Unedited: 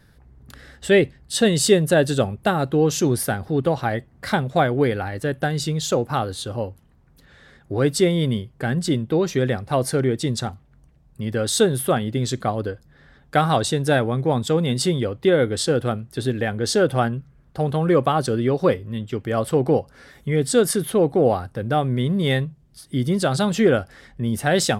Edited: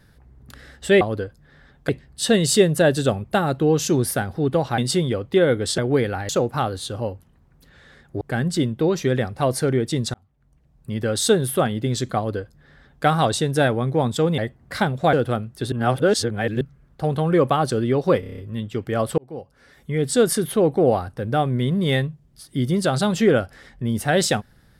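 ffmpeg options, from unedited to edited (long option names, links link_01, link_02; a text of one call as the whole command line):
ffmpeg -i in.wav -filter_complex "[0:a]asplit=19[link_01][link_02][link_03][link_04][link_05][link_06][link_07][link_08][link_09][link_10][link_11][link_12][link_13][link_14][link_15][link_16][link_17][link_18][link_19];[link_01]atrim=end=1.012[link_20];[link_02]atrim=start=12.478:end=13.362[link_21];[link_03]atrim=start=1.008:end=3.902[link_22];[link_04]atrim=start=14.688:end=15.692[link_23];[link_05]atrim=start=4.648:end=5.162[link_24];[link_06]atrim=start=5.848:end=7.772[link_25];[link_07]atrim=start=8.518:end=10.45,asetpts=PTS-STARTPTS,afade=type=out:start_time=1.928:duration=0.004:curve=hsin[link_26];[link_08]atrim=start=10.45:end=14.692,asetpts=PTS-STARTPTS,afade=type=in:duration=0.76[link_27];[link_09]atrim=start=3.898:end=4.652[link_28];[link_10]atrim=start=15.688:end=16.282[link_29];[link_11]atrim=start=16.278:end=17.172,asetpts=PTS-STARTPTS,areverse[link_30];[link_12]atrim=start=17.168:end=18.792[link_31];[link_13]atrim=start=18.758:end=18.792[link_32];[link_14]atrim=start=18.758:end=18.792[link_33];[link_15]atrim=start=18.758:end=18.792[link_34];[link_16]atrim=start=18.758:end=18.792[link_35];[link_17]atrim=start=18.758:end=18.792[link_36];[link_18]atrim=start=18.758:end=19.56,asetpts=PTS-STARTPTS,afade=type=out:start_time=0.798:duration=0.004:curve=hsin[link_37];[link_19]atrim=start=19.56,asetpts=PTS-STARTPTS,afade=type=in:duration=1.01[link_38];[link_20][link_21]acrossfade=duration=0.004:curve1=hsin:curve2=hsin[link_39];[link_39][link_22]acrossfade=duration=0.004:curve1=hsin:curve2=hsin[link_40];[link_40][link_23]acrossfade=duration=0.004:curve1=hsin:curve2=hsin[link_41];[link_41][link_24]acrossfade=duration=0.004:curve1=hsin:curve2=hsin[link_42];[link_42][link_25]acrossfade=duration=0.004:curve1=hsin:curve2=hsin[link_43];[link_26][link_27]concat=n=2:v=0:a=1[link_44];[link_43][link_44]acrossfade=duration=0.004:curve1=hsin:curve2=hsin[link_45];[link_45][link_28]acrossfade=duration=0.004:curve1=hsin:curve2=hsin[link_46];[link_46][link_29]acrossfade=duration=0.004:curve1=hsin:curve2=hsin[link_47];[link_47][link_30]acrossfade=duration=0.004:curve1=hsin:curve2=hsin[link_48];[link_48][link_31]acrossfade=duration=0.004:curve1=hsin:curve2=hsin[link_49];[link_49][link_32]acrossfade=duration=0.004:curve1=hsin:curve2=hsin[link_50];[link_50][link_33]acrossfade=duration=0.004:curve1=hsin:curve2=hsin[link_51];[link_51][link_34]acrossfade=duration=0.004:curve1=hsin:curve2=hsin[link_52];[link_52][link_35]acrossfade=duration=0.004:curve1=hsin:curve2=hsin[link_53];[link_53][link_36]acrossfade=duration=0.004:curve1=hsin:curve2=hsin[link_54];[link_37][link_38]concat=n=2:v=0:a=1[link_55];[link_54][link_55]acrossfade=duration=0.004:curve1=hsin:curve2=hsin" out.wav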